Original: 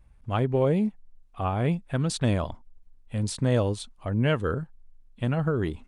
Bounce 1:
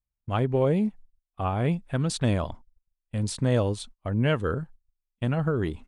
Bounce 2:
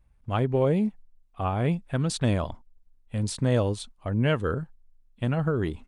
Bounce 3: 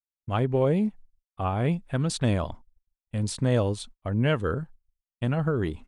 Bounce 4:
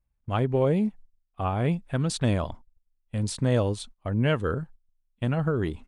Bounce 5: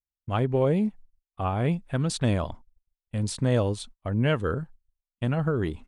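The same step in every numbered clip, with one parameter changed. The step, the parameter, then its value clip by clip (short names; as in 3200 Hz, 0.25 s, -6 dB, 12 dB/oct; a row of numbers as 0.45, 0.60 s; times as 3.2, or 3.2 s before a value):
gate, range: -32, -6, -60, -20, -44 dB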